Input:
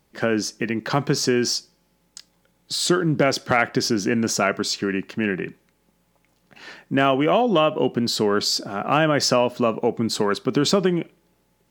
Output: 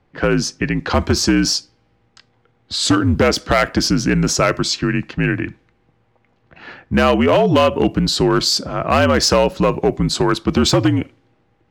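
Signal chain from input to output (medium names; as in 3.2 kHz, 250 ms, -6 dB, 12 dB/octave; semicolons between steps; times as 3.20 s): frequency shift -60 Hz; level-controlled noise filter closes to 2.3 kHz, open at -17 dBFS; hard clipper -12.5 dBFS, distortion -18 dB; trim +5.5 dB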